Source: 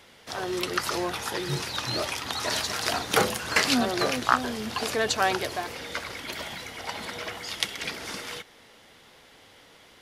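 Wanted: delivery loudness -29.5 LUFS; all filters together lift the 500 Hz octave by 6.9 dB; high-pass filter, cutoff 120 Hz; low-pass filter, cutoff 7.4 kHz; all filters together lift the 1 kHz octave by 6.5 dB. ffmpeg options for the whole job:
-af "highpass=120,lowpass=7400,equalizer=f=500:t=o:g=7,equalizer=f=1000:t=o:g=6.5,volume=0.562"

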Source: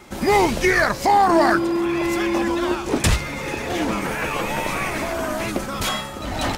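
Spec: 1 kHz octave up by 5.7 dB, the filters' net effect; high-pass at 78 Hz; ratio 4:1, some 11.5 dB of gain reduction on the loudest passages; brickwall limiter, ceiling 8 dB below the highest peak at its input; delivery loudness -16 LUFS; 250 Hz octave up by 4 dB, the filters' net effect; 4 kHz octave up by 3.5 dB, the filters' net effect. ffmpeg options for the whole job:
-af "highpass=78,equalizer=f=250:t=o:g=5.5,equalizer=f=1000:t=o:g=7,equalizer=f=4000:t=o:g=4,acompressor=threshold=0.0891:ratio=4,volume=3.35,alimiter=limit=0.422:level=0:latency=1"

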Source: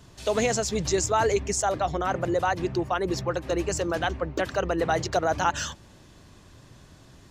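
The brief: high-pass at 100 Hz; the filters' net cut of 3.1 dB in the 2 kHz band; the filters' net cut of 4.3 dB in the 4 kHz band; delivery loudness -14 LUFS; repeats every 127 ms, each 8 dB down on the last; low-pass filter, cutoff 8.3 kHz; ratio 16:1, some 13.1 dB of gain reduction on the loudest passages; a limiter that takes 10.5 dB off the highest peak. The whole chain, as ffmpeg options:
-af "highpass=100,lowpass=8300,equalizer=f=2000:t=o:g=-3.5,equalizer=f=4000:t=o:g=-4.5,acompressor=threshold=0.0224:ratio=16,alimiter=level_in=2.82:limit=0.0631:level=0:latency=1,volume=0.355,aecho=1:1:127|254|381|508|635:0.398|0.159|0.0637|0.0255|0.0102,volume=23.7"

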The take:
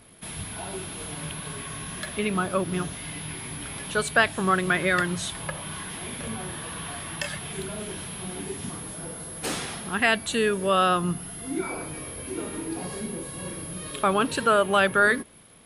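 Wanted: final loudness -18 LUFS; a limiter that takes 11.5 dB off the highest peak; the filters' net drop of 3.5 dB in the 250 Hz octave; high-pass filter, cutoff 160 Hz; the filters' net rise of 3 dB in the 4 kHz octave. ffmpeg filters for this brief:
-af "highpass=160,equalizer=f=250:t=o:g=-3.5,equalizer=f=4000:t=o:g=4,volume=4.22,alimiter=limit=0.631:level=0:latency=1"

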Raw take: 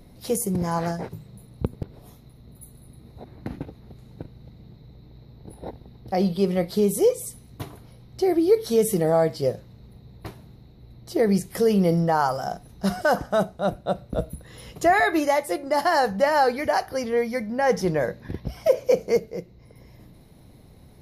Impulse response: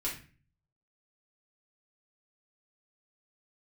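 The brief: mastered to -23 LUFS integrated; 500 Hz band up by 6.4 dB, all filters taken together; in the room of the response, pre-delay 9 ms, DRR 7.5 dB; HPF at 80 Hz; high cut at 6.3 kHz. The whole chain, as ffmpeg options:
-filter_complex "[0:a]highpass=80,lowpass=6300,equalizer=f=500:t=o:g=7.5,asplit=2[s0][s1];[1:a]atrim=start_sample=2205,adelay=9[s2];[s1][s2]afir=irnorm=-1:irlink=0,volume=0.282[s3];[s0][s3]amix=inputs=2:normalize=0,volume=0.562"

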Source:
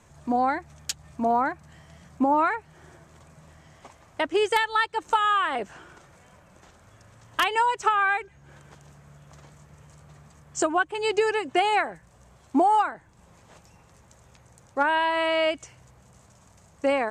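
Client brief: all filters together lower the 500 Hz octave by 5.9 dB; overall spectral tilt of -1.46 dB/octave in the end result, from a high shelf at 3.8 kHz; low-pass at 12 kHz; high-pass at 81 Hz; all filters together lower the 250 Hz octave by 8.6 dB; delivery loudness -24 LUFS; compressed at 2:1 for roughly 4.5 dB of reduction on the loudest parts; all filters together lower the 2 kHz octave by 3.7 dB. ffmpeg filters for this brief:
-af "highpass=81,lowpass=12000,equalizer=f=250:t=o:g=-8.5,equalizer=f=500:t=o:g=-5.5,equalizer=f=2000:t=o:g=-6.5,highshelf=f=3800:g=9,acompressor=threshold=0.0398:ratio=2,volume=2.24"

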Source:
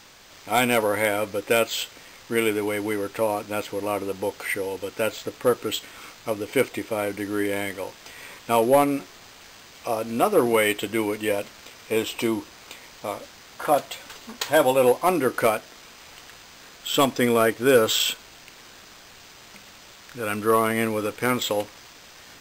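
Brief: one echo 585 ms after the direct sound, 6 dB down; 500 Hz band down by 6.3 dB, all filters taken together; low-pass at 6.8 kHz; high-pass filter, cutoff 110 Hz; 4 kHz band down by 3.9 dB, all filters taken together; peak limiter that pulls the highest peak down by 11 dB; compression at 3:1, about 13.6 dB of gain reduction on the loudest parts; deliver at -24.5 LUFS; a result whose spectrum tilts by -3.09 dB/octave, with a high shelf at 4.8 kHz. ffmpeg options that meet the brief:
-af "highpass=110,lowpass=6800,equalizer=f=500:t=o:g=-7.5,equalizer=f=4000:t=o:g=-8.5,highshelf=f=4800:g=8,acompressor=threshold=0.0141:ratio=3,alimiter=level_in=2.11:limit=0.0631:level=0:latency=1,volume=0.473,aecho=1:1:585:0.501,volume=7.5"

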